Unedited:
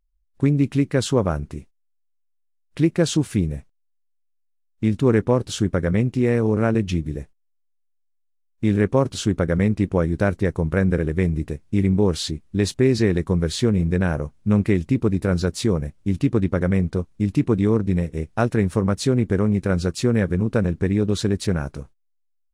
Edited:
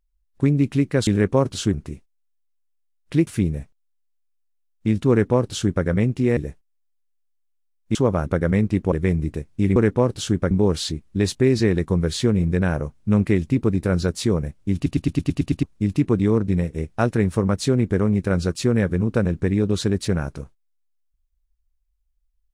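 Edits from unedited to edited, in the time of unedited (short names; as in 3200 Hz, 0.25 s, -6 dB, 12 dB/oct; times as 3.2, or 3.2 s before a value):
1.07–1.38 swap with 8.67–9.33
2.92–3.24 cut
5.07–5.82 copy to 11.9
6.34–7.09 cut
9.99–11.06 cut
16.14 stutter in place 0.11 s, 8 plays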